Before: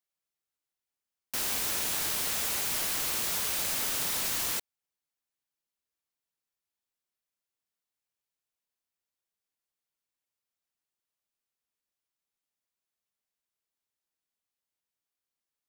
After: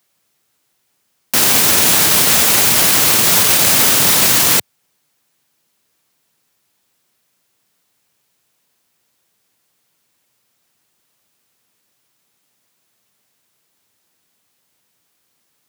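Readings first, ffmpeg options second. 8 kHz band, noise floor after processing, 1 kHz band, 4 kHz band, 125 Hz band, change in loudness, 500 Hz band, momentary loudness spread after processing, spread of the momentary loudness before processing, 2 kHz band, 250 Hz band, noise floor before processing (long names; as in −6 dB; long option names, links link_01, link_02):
+19.0 dB, −66 dBFS, +19.5 dB, +19.0 dB, +22.5 dB, +19.0 dB, +20.5 dB, 3 LU, 3 LU, +19.0 dB, +22.5 dB, below −85 dBFS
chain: -af "highpass=frequency=100:width=0.5412,highpass=frequency=100:width=1.3066,lowshelf=frequency=260:gain=6.5,alimiter=level_in=25.5dB:limit=-1dB:release=50:level=0:latency=1,volume=-1dB"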